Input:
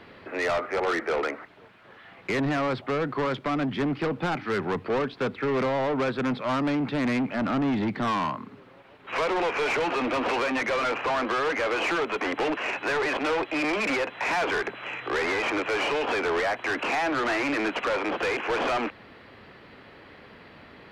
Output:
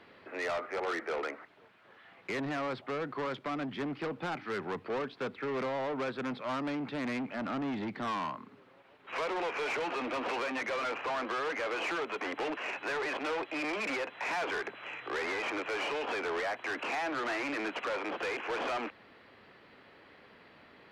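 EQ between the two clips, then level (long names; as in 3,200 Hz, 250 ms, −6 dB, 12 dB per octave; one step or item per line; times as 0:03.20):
low-shelf EQ 160 Hz −8.5 dB
−7.5 dB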